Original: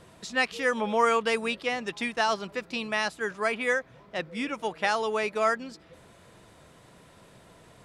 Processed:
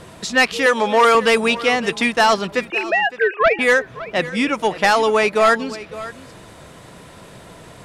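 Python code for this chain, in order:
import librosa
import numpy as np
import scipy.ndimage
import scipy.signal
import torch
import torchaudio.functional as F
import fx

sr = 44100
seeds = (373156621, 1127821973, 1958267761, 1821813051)

p1 = fx.sine_speech(x, sr, at=(2.7, 3.59))
p2 = fx.fold_sine(p1, sr, drive_db=7, ceiling_db=-11.0)
p3 = p1 + F.gain(torch.from_numpy(p2), -3.0).numpy()
p4 = fx.highpass(p3, sr, hz=300.0, slope=12, at=(0.66, 1.15))
p5 = p4 + 10.0 ** (-16.5 / 20.0) * np.pad(p4, (int(561 * sr / 1000.0), 0))[:len(p4)]
y = F.gain(torch.from_numpy(p5), 2.0).numpy()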